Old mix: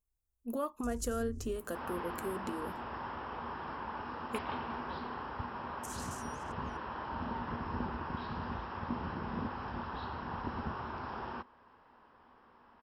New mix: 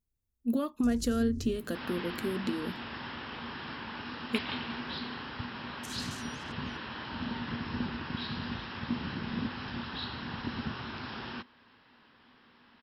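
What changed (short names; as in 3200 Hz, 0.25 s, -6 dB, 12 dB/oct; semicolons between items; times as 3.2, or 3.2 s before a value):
second sound: add tilt shelf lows -5.5 dB, about 1300 Hz; master: add graphic EQ 125/250/1000/2000/4000/8000 Hz +9/+9/-5/+5/+12/-4 dB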